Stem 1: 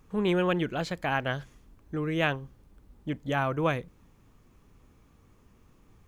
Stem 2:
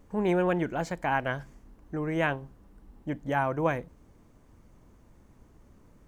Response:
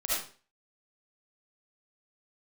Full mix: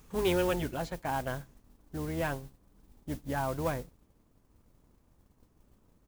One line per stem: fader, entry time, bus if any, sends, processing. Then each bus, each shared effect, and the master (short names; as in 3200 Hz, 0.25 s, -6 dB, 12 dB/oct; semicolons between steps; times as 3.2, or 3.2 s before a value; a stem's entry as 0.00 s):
+0.5 dB, 0.00 s, no send, high shelf 3700 Hz +11 dB; auto duck -20 dB, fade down 1.10 s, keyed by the second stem
-8.5 dB, 7.5 ms, no send, octaver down 2 oct, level -5 dB; LPF 1700 Hz; sample leveller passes 1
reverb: off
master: modulation noise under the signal 17 dB